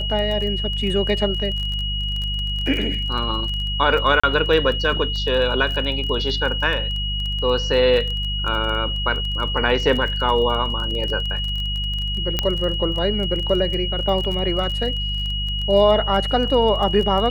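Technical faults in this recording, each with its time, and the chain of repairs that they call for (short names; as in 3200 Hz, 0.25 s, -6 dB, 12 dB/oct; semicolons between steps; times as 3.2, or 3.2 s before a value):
crackle 22/s -25 dBFS
hum 50 Hz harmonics 4 -26 dBFS
tone 2900 Hz -25 dBFS
4.2–4.24 gap 35 ms
12.39 pop -5 dBFS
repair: de-click; de-hum 50 Hz, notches 4; notch 2900 Hz, Q 30; interpolate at 4.2, 35 ms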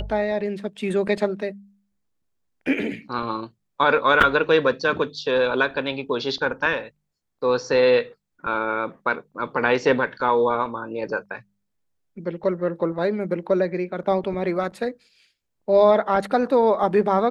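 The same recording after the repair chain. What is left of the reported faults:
none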